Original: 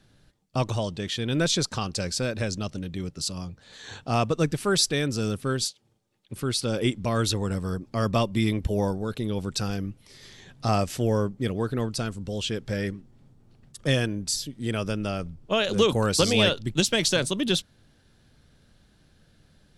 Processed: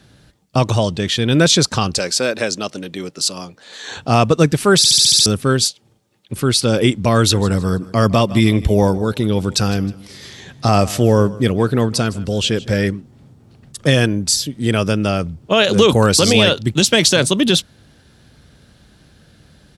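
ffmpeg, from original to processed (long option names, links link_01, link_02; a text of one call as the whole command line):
ffmpeg -i in.wav -filter_complex "[0:a]asettb=1/sr,asplit=3[link_01][link_02][link_03];[link_01]atrim=end=1.984[link_04];[link_02]atrim=start=1.98:end=3.97,asetpts=PTS-STARTPTS,afade=type=in:duration=0.004:curve=qsin,afade=type=out:start_time=1.986:duration=0.004:curve=qsin,highpass=310[link_05];[link_03]atrim=start=3.966[link_06];[link_04][link_05]acrossfade=duration=0.004:curve1=hsin:curve2=qsin[link_07];[link_07][link_06]acrossfade=duration=0.004:curve1=qsin:curve2=hsin,asplit=3[link_08][link_09][link_10];[link_08]afade=type=out:start_time=7.31:duration=0.02[link_11];[link_09]aecho=1:1:157|314|471:0.1|0.034|0.0116,afade=type=in:start_time=7.31:duration=0.02,afade=type=out:start_time=12.82:duration=0.02[link_12];[link_10]afade=type=in:start_time=12.82:duration=0.02[link_13];[link_11][link_12][link_13]amix=inputs=3:normalize=0,asplit=8[link_14][link_15][link_16][link_17][link_18][link_19][link_20][link_21];[link_14]atrim=end=4.842[link_22];[link_15]atrim=start=4.768:end=4.842[link_23];[link_16]atrim=start=4.768:end=4.842[link_24];[link_17]atrim=start=4.768:end=4.842[link_25];[link_18]atrim=start=4.768:end=4.842[link_26];[link_19]atrim=start=4.768:end=4.842[link_27];[link_20]atrim=start=4.768:end=4.842[link_28];[link_21]atrim=start=5.258[link_29];[link_22][link_23]acrossfade=duration=0.004:curve1=hsin:curve2=hsin[link_30];[link_30][link_24]acrossfade=duration=0.004:curve1=hsin:curve2=hsin[link_31];[link_31][link_25]acrossfade=duration=0.004:curve1=hsin:curve2=hsin[link_32];[link_32][link_26]acrossfade=duration=0.004:curve1=hsin:curve2=hsin[link_33];[link_33][link_27]acrossfade=duration=0.004:curve1=hsin:curve2=hsin[link_34];[link_34][link_28]acrossfade=duration=0.004:curve1=hsin:curve2=hsin[link_35];[link_35][link_29]acrossfade=duration=0.004:curve1=hsin:curve2=hsin,highpass=frequency=41:width=0.5412,highpass=frequency=41:width=1.3066,alimiter=level_in=12.5dB:limit=-1dB:release=50:level=0:latency=1,volume=-1dB" out.wav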